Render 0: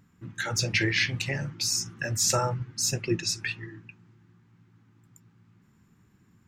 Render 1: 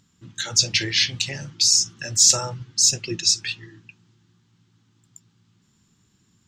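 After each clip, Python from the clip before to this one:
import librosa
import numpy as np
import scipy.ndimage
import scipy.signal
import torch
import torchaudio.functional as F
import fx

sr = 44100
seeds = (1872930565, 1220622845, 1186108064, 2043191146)

y = fx.band_shelf(x, sr, hz=4900.0, db=13.5, octaves=1.7)
y = y * librosa.db_to_amplitude(-2.5)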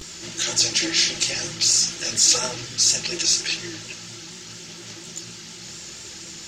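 y = fx.bin_compress(x, sr, power=0.4)
y = fx.vibrato(y, sr, rate_hz=4.2, depth_cents=55.0)
y = fx.chorus_voices(y, sr, voices=6, hz=0.85, base_ms=15, depth_ms=3.2, mix_pct=70)
y = y * librosa.db_to_amplitude(-3.0)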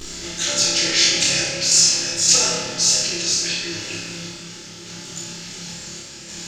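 y = fx.tremolo_random(x, sr, seeds[0], hz=3.5, depth_pct=55)
y = fx.room_flutter(y, sr, wall_m=5.0, rt60_s=0.57)
y = fx.room_shoebox(y, sr, seeds[1], volume_m3=120.0, walls='hard', distance_m=0.32)
y = y * librosa.db_to_amplitude(2.0)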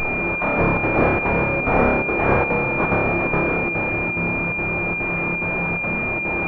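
y = x + 0.5 * 10.0 ** (-19.0 / 20.0) * np.sign(x)
y = fx.chopper(y, sr, hz=2.4, depth_pct=60, duty_pct=85)
y = fx.pwm(y, sr, carrier_hz=2400.0)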